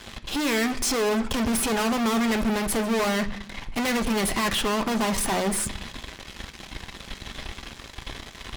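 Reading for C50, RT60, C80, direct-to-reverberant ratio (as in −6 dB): 15.5 dB, 0.65 s, 18.5 dB, 7.0 dB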